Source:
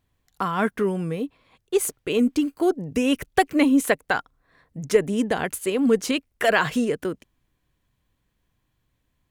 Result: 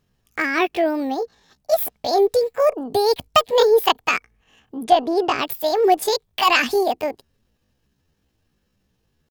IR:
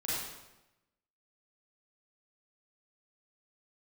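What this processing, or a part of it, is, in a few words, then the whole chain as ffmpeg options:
chipmunk voice: -filter_complex "[0:a]asetrate=72056,aresample=44100,atempo=0.612027,asplit=3[a][b][c];[a]afade=t=out:st=4.85:d=0.02[d];[b]lowpass=6.2k,afade=t=in:st=4.85:d=0.02,afade=t=out:st=5.37:d=0.02[e];[c]afade=t=in:st=5.37:d=0.02[f];[d][e][f]amix=inputs=3:normalize=0,volume=3.5dB"

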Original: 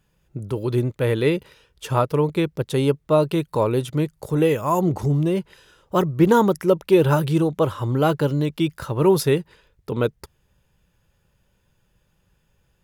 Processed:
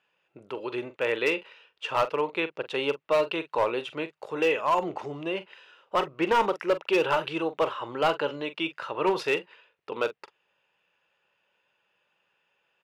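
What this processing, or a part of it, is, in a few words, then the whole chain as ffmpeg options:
megaphone: -filter_complex "[0:a]highpass=610,lowpass=3k,equalizer=f=2.7k:t=o:w=0.3:g=9,asoftclip=type=hard:threshold=-17dB,asplit=2[a][b];[b]adelay=43,volume=-13dB[c];[a][c]amix=inputs=2:normalize=0"

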